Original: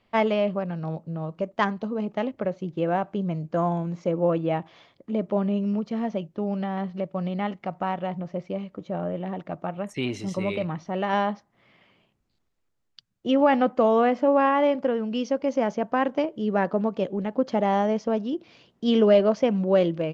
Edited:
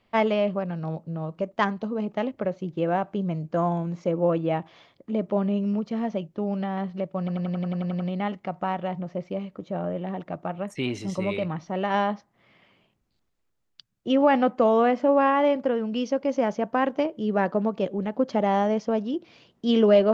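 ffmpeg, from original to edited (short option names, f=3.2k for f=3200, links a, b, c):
-filter_complex "[0:a]asplit=10[a][b][c][d][e][f][g][h][i][j];[a]atrim=end=7.282[k];[b]atrim=start=7.188:end=7.282[l];[c]atrim=start=7.188:end=7.282[m];[d]atrim=start=7.188:end=7.282[n];[e]atrim=start=7.188:end=7.282[o];[f]atrim=start=7.188:end=7.282[p];[g]atrim=start=7.188:end=7.282[q];[h]atrim=start=7.188:end=7.282[r];[i]atrim=start=7.188:end=7.282[s];[j]atrim=start=7.188[t];[k][l]acrossfade=d=0.004:c1=hsin:c2=hsin[u];[u][m]acrossfade=d=0.004:c1=hsin:c2=hsin[v];[v][n]acrossfade=d=0.004:c1=hsin:c2=hsin[w];[w][o]acrossfade=d=0.004:c1=hsin:c2=hsin[x];[x][p]acrossfade=d=0.004:c1=hsin:c2=hsin[y];[y][q]acrossfade=d=0.004:c1=hsin:c2=hsin[z];[z][r]acrossfade=d=0.004:c1=hsin:c2=hsin[aa];[aa][s]acrossfade=d=0.004:c1=hsin:c2=hsin[ab];[ab][t]acrossfade=d=0.004:c1=hsin:c2=hsin"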